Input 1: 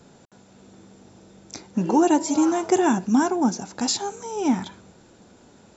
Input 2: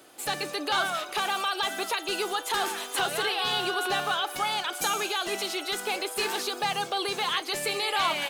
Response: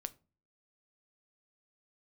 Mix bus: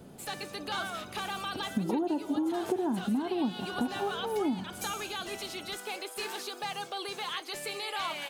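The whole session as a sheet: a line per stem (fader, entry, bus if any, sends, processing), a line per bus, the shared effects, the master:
+2.0 dB, 0.00 s, no send, Bessel low-pass 660 Hz
-8.0 dB, 0.00 s, no send, dry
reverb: off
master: compressor 10:1, threshold -27 dBFS, peak gain reduction 14.5 dB

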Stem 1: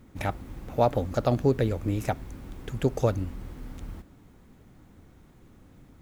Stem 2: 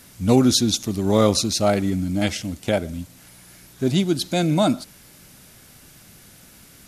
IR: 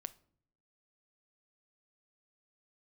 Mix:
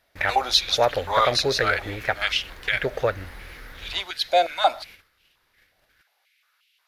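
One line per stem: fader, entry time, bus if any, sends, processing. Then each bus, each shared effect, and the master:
-3.0 dB, 0.00 s, no send, bell 1700 Hz +14.5 dB 0.95 oct
-5.0 dB, 0.00 s, send -19.5 dB, stepped high-pass 5.6 Hz 660–2800 Hz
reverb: on, pre-delay 7 ms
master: gate -47 dBFS, range -18 dB; graphic EQ 125/250/500/2000/4000/8000 Hz -4/-9/+7/+5/+7/-11 dB

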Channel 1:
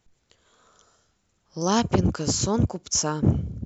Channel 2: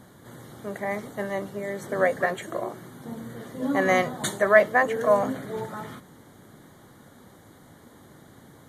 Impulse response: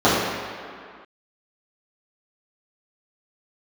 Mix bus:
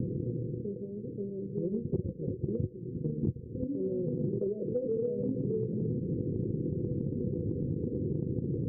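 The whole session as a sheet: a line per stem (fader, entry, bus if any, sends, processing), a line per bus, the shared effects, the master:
-4.0 dB, 0.00 s, no send, LPF 2100 Hz 12 dB/oct; notches 60/120/180/240/300/360/420/480 Hz
-3.0 dB, 0.00 s, no send, fast leveller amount 70%; auto duck -10 dB, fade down 0.70 s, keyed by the first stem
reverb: off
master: transient shaper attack +8 dB, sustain -11 dB; rippled Chebyshev low-pass 510 Hz, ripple 6 dB; compressor, threshold -28 dBFS, peak gain reduction 14 dB

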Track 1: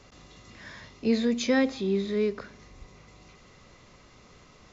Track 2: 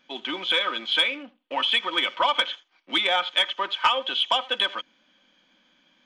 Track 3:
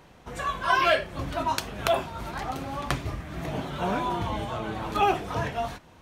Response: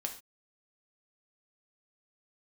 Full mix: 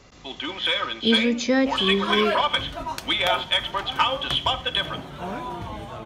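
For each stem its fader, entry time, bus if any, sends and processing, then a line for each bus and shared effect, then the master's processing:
+3.0 dB, 0.00 s, no send, dry
-4.0 dB, 0.15 s, send -5 dB, dry
-4.0 dB, 1.40 s, no send, dry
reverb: on, pre-delay 3 ms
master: dry

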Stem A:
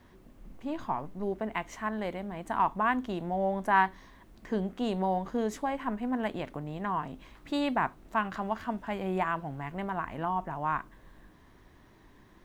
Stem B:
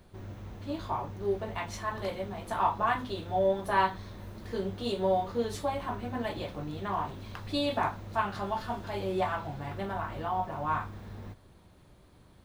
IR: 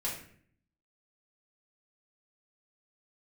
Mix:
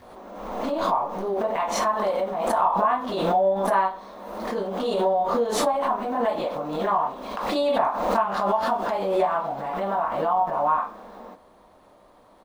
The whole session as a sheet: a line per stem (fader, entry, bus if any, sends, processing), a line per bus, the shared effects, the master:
-7.5 dB, 0.00 s, no send, dry
+2.0 dB, 19 ms, send -16.5 dB, band shelf 770 Hz +9.5 dB; compressor, threshold -21 dBFS, peak gain reduction 9.5 dB; rippled Chebyshev high-pass 190 Hz, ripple 3 dB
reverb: on, RT60 0.55 s, pre-delay 3 ms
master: backwards sustainer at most 39 dB/s

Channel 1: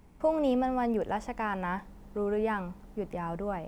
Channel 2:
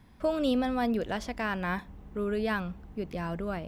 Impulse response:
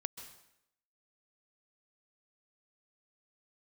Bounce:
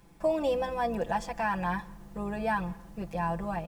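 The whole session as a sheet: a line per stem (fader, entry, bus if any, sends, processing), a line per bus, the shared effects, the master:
-3.5 dB, 0.00 s, send -9 dB, tone controls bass -2 dB, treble +5 dB
-7.0 dB, 0.4 ms, no send, octaver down 2 oct, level 0 dB; steep low-pass 5500 Hz 96 dB/oct; limiter -24 dBFS, peak gain reduction 9.5 dB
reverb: on, RT60 0.80 s, pre-delay 0.123 s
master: low shelf 120 Hz -4.5 dB; comb 5.9 ms, depth 85%

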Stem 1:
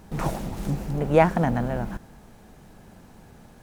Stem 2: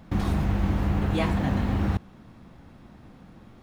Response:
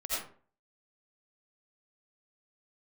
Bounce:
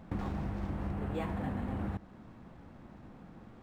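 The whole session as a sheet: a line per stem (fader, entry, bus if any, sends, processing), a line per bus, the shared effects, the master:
-13.5 dB, 0.00 s, no send, compressor, threshold -28 dBFS, peak gain reduction 15.5 dB
-1.5 dB, 0.00 s, send -23 dB, high shelf 3200 Hz -11 dB; compressor, threshold -29 dBFS, peak gain reduction 9.5 dB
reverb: on, RT60 0.45 s, pre-delay 45 ms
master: low shelf 200 Hz -4 dB; decimation joined by straight lines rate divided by 4×

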